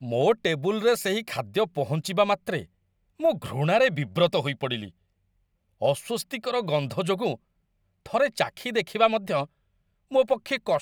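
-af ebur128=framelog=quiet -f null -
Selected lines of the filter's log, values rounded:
Integrated loudness:
  I:         -25.8 LUFS
  Threshold: -36.1 LUFS
Loudness range:
  LRA:         3.7 LU
  Threshold: -47.0 LUFS
  LRA low:   -29.4 LUFS
  LRA high:  -25.6 LUFS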